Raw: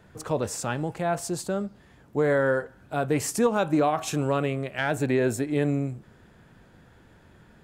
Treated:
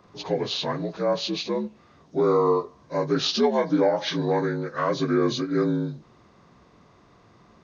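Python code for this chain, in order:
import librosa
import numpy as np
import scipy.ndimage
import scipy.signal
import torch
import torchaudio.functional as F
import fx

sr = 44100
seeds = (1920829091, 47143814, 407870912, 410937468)

y = fx.partial_stretch(x, sr, pct=80)
y = fx.bass_treble(y, sr, bass_db=-4, treble_db=6)
y = F.gain(torch.from_numpy(y), 3.5).numpy()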